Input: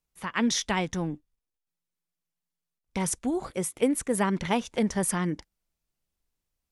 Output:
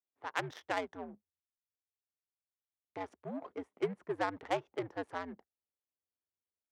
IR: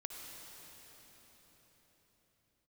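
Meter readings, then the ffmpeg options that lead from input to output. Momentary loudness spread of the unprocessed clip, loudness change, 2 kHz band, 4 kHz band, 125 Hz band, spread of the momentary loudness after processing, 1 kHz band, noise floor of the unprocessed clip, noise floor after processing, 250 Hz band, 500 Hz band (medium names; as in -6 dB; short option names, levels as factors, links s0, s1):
7 LU, -11.5 dB, -8.0 dB, -14.5 dB, -16.5 dB, 11 LU, -6.5 dB, under -85 dBFS, under -85 dBFS, -16.5 dB, -8.0 dB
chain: -af "afreqshift=-93,adynamicsmooth=sensitivity=1.5:basefreq=590,highpass=410,volume=0.631"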